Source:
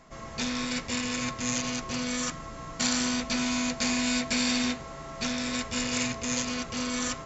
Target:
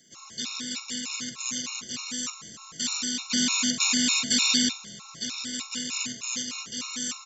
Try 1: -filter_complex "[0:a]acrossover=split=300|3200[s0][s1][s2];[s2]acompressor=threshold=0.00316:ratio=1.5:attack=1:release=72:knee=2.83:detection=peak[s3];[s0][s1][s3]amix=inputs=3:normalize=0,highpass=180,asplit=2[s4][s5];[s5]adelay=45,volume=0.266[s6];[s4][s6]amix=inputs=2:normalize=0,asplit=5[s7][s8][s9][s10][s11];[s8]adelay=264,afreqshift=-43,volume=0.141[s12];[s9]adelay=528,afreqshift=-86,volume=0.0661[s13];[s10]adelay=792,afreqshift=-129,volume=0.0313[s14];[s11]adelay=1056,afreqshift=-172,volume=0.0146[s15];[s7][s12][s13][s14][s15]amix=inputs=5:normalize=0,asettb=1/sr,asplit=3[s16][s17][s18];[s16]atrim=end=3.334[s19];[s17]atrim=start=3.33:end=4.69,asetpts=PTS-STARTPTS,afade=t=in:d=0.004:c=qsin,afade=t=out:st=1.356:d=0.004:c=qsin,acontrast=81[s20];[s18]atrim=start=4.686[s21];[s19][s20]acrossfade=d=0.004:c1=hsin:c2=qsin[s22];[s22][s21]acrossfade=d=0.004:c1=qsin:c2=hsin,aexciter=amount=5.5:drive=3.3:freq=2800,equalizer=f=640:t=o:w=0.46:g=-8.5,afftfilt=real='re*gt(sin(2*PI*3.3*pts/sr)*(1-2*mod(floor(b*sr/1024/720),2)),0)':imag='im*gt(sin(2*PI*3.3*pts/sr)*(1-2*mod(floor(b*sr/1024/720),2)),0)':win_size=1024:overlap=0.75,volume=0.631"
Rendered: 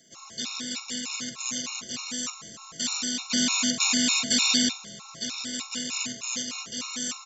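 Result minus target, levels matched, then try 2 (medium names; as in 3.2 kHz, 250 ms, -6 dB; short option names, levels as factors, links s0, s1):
500 Hz band +4.5 dB
-filter_complex "[0:a]acrossover=split=300|3200[s0][s1][s2];[s2]acompressor=threshold=0.00316:ratio=1.5:attack=1:release=72:knee=2.83:detection=peak[s3];[s0][s1][s3]amix=inputs=3:normalize=0,highpass=180,asplit=2[s4][s5];[s5]adelay=45,volume=0.266[s6];[s4][s6]amix=inputs=2:normalize=0,asplit=5[s7][s8][s9][s10][s11];[s8]adelay=264,afreqshift=-43,volume=0.141[s12];[s9]adelay=528,afreqshift=-86,volume=0.0661[s13];[s10]adelay=792,afreqshift=-129,volume=0.0313[s14];[s11]adelay=1056,afreqshift=-172,volume=0.0146[s15];[s7][s12][s13][s14][s15]amix=inputs=5:normalize=0,asettb=1/sr,asplit=3[s16][s17][s18];[s16]atrim=end=3.334[s19];[s17]atrim=start=3.33:end=4.69,asetpts=PTS-STARTPTS,afade=t=in:d=0.004:c=qsin,afade=t=out:st=1.356:d=0.004:c=qsin,acontrast=81[s20];[s18]atrim=start=4.686[s21];[s19][s20]acrossfade=d=0.004:c1=hsin:c2=qsin[s22];[s22][s21]acrossfade=d=0.004:c1=qsin:c2=hsin,aexciter=amount=5.5:drive=3.3:freq=2800,equalizer=f=640:t=o:w=0.46:g=-19.5,afftfilt=real='re*gt(sin(2*PI*3.3*pts/sr)*(1-2*mod(floor(b*sr/1024/720),2)),0)':imag='im*gt(sin(2*PI*3.3*pts/sr)*(1-2*mod(floor(b*sr/1024/720),2)),0)':win_size=1024:overlap=0.75,volume=0.631"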